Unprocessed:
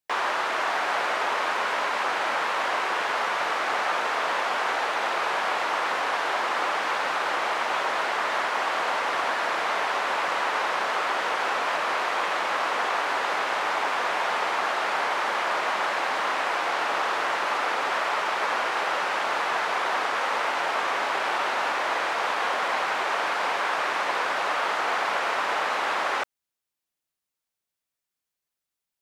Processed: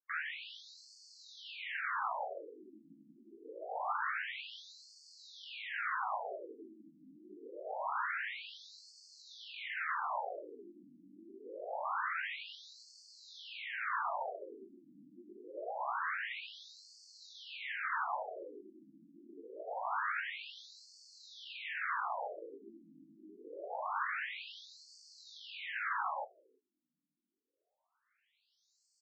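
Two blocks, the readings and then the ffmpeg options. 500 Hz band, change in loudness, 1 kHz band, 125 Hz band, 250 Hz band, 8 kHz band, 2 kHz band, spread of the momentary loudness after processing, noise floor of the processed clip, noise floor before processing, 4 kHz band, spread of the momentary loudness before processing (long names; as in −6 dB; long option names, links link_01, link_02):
−17.0 dB, −14.5 dB, −16.5 dB, can't be measured, −15.0 dB, −22.5 dB, −15.0 dB, 20 LU, −83 dBFS, below −85 dBFS, −17.5 dB, 0 LU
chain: -filter_complex "[0:a]acrossover=split=4100[link_01][link_02];[link_02]acompressor=threshold=-56dB:ratio=4:attack=1:release=60[link_03];[link_01][link_03]amix=inputs=2:normalize=0,equalizer=frequency=1500:width_type=o:width=0.77:gain=3,areverse,acompressor=mode=upward:threshold=-42dB:ratio=2.5,areverse,flanger=delay=9:depth=4.2:regen=-72:speed=1.1:shape=triangular,asplit=2[link_04][link_05];[link_05]asoftclip=type=hard:threshold=-29.5dB,volume=-4dB[link_06];[link_04][link_06]amix=inputs=2:normalize=0,flanger=delay=18:depth=3:speed=0.31,aecho=1:1:340:0.0841,afftfilt=real='re*between(b*sr/1024,230*pow(6100/230,0.5+0.5*sin(2*PI*0.25*pts/sr))/1.41,230*pow(6100/230,0.5+0.5*sin(2*PI*0.25*pts/sr))*1.41)':imag='im*between(b*sr/1024,230*pow(6100/230,0.5+0.5*sin(2*PI*0.25*pts/sr))/1.41,230*pow(6100/230,0.5+0.5*sin(2*PI*0.25*pts/sr))*1.41)':win_size=1024:overlap=0.75,volume=-4.5dB"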